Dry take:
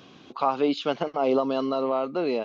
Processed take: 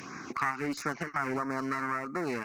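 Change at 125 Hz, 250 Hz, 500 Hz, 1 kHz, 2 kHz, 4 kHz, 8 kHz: +1.5 dB, −7.0 dB, −13.5 dB, −5.0 dB, +6.5 dB, −11.5 dB, can't be measured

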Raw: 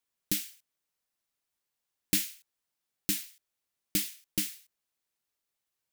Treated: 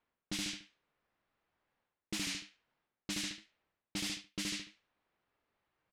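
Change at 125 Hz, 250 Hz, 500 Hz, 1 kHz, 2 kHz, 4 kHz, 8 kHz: −5.5, −4.0, −3.5, +6.0, +0.5, −1.0, −7.5 decibels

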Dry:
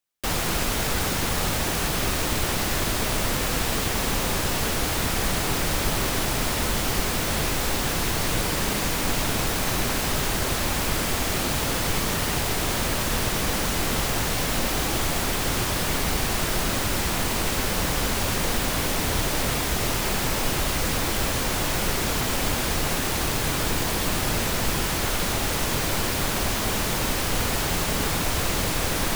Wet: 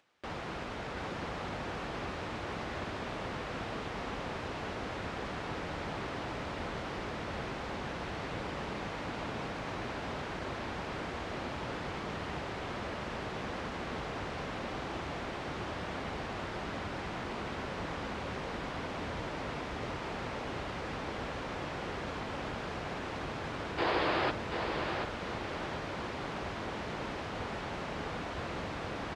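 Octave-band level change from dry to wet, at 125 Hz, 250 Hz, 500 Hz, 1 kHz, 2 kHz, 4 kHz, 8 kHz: −14.0, −11.0, −9.0, −9.0, −11.5, −17.5, −29.5 decibels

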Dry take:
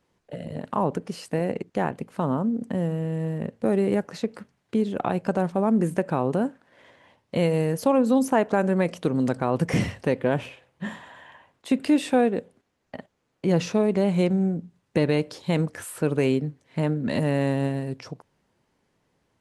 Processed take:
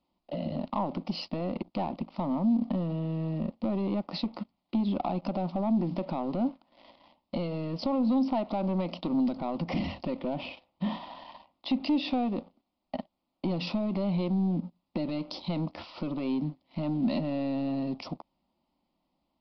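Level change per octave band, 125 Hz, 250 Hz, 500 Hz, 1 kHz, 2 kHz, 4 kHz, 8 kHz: −7.5 dB, −4.0 dB, −10.5 dB, −6.0 dB, −12.0 dB, −1.0 dB, below −20 dB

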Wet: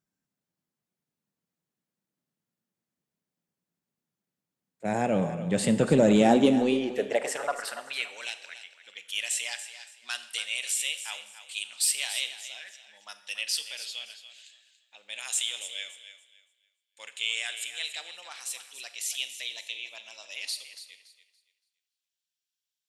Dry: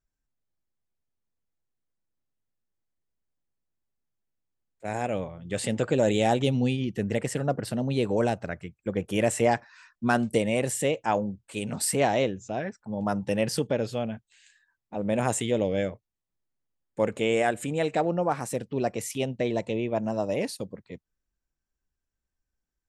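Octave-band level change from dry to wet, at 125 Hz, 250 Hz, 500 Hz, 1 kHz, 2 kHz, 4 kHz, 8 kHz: −6.5, −1.0, −4.5, −5.5, 0.0, +7.0, +3.5 decibels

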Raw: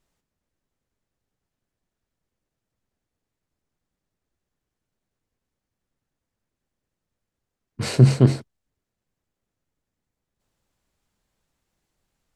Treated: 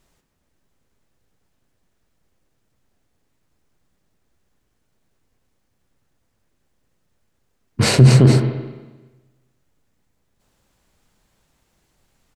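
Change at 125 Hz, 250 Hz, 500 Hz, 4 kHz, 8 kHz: +5.5, +5.0, +5.5, +10.5, +10.5 decibels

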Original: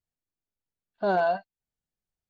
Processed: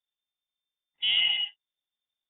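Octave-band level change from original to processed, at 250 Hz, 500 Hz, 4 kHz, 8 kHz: below −25 dB, below −35 dB, +27.0 dB, can't be measured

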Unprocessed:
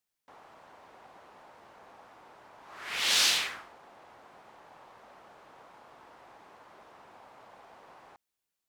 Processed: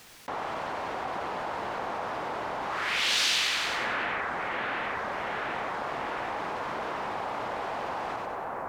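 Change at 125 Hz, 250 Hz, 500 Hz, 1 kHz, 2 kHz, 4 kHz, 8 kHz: can't be measured, +16.0 dB, +17.0 dB, +16.0 dB, +7.5 dB, +1.5 dB, −2.0 dB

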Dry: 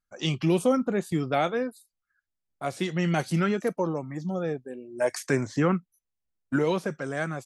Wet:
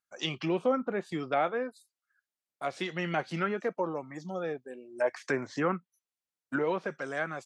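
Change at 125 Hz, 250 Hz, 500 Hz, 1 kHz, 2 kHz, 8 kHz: −11.5, −8.0, −4.0, −2.0, −1.5, −11.5 decibels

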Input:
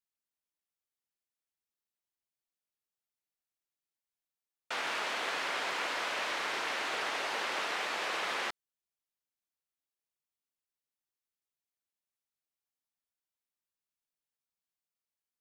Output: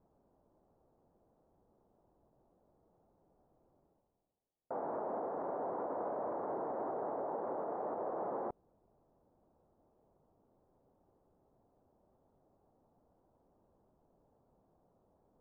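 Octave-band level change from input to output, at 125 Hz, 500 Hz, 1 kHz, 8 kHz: can't be measured, +4.0 dB, −3.0 dB, below −30 dB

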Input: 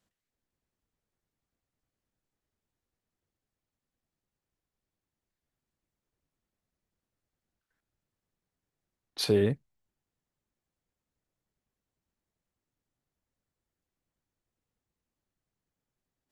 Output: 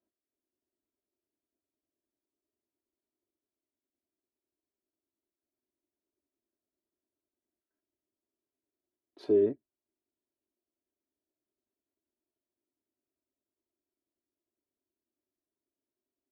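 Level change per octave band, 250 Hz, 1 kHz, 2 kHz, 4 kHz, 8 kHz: −2.0 dB, can't be measured, below −15 dB, below −20 dB, below −25 dB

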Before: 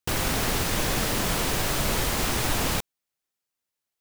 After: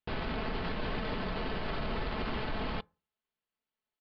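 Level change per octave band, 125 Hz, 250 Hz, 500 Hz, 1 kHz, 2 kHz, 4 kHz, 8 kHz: −9.5 dB, −7.0 dB, −7.0 dB, −8.0 dB, −10.0 dB, −13.5 dB, below −40 dB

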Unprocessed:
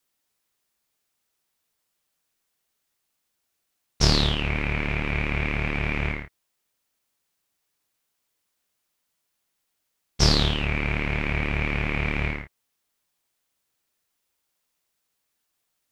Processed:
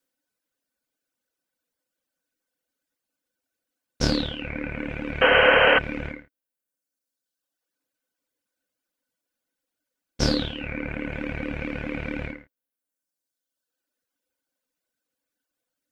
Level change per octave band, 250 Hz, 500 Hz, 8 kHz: +0.5, +8.5, −6.5 decibels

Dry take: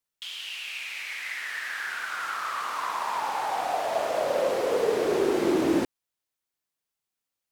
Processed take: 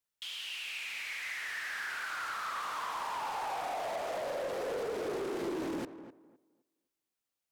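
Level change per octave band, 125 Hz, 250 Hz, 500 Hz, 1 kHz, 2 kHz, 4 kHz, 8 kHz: −9.5, −12.0, −11.0, −8.0, −5.5, −5.5, −7.0 decibels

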